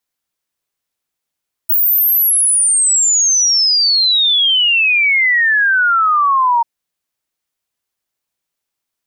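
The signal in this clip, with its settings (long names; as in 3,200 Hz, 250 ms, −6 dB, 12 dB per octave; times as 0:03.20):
exponential sine sweep 16,000 Hz → 920 Hz 4.94 s −9.5 dBFS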